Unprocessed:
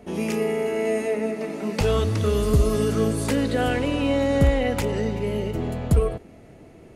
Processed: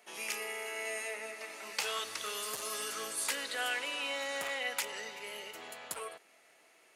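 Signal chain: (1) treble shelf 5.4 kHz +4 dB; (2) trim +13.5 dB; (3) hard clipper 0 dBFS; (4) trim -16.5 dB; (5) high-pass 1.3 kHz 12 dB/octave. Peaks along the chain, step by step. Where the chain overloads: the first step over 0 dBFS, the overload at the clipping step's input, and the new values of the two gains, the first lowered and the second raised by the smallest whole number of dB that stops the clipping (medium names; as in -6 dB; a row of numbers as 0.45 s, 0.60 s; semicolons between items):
-9.0 dBFS, +4.5 dBFS, 0.0 dBFS, -16.5 dBFS, -17.0 dBFS; step 2, 4.5 dB; step 2 +8.5 dB, step 4 -11.5 dB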